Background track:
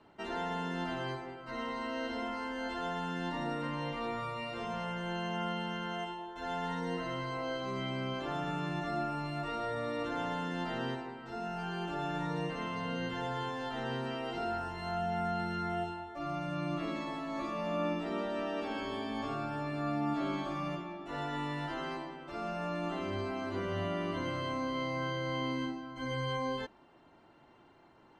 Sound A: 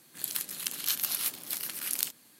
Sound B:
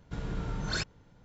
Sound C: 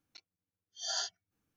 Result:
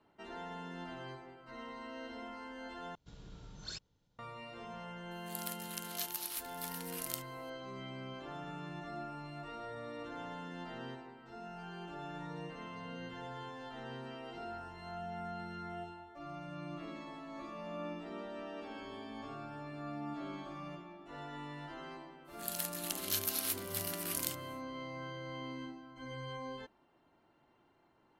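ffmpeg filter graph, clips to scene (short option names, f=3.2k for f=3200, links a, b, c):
-filter_complex "[1:a]asplit=2[a][b];[0:a]volume=-9dB[c];[2:a]highshelf=f=2.7k:t=q:w=1.5:g=7[d];[b]asoftclip=type=tanh:threshold=-12dB[e];[c]asplit=2[f][g];[f]atrim=end=2.954[h];[d]atrim=end=1.24,asetpts=PTS-STARTPTS,volume=-17.5dB[i];[g]atrim=start=4.186[j];[a]atrim=end=2.39,asetpts=PTS-STARTPTS,volume=-10dB,afade=t=in:d=0.004:c=hsin,afade=t=out:st=2.386:d=0.004:c=hsin,adelay=5110[k];[e]atrim=end=2.39,asetpts=PTS-STARTPTS,volume=-4.5dB,afade=t=in:d=0.1,afade=t=out:st=2.29:d=0.1,adelay=22240[l];[h][i]acrossfade=d=0.004:c1=hsin:c2=hsin[m];[m][j]acrossfade=d=0.004:c1=hsin:c2=hsin[n];[n][k][l]amix=inputs=3:normalize=0"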